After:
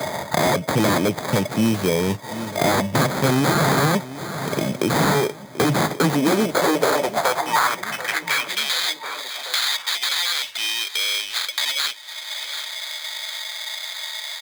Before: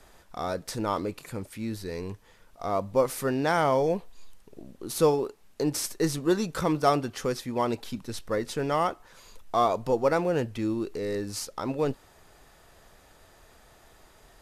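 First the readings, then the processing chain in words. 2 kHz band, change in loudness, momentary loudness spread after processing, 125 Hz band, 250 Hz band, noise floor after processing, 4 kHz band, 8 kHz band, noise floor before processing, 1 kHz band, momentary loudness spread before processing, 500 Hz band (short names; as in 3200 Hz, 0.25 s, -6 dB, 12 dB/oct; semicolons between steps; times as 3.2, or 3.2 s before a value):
+15.0 dB, +7.0 dB, 9 LU, +10.0 dB, +7.5 dB, -37 dBFS, +19.0 dB, +11.0 dB, -57 dBFS, +6.5 dB, 13 LU, +4.0 dB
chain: block floating point 5-bit; HPF 70 Hz 24 dB/oct; small resonant body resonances 620/890/3500 Hz, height 16 dB, ringing for 40 ms; in parallel at 0 dB: compressor, threshold -31 dBFS, peak gain reduction 19 dB; on the sum: sample-rate reducer 2800 Hz, jitter 0%; wavefolder -20 dBFS; high-pass sweep 140 Hz -> 3600 Hz, 5.8–8.72; feedback echo 0.736 s, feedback 39%, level -19.5 dB; three-band squash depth 70%; gain +6.5 dB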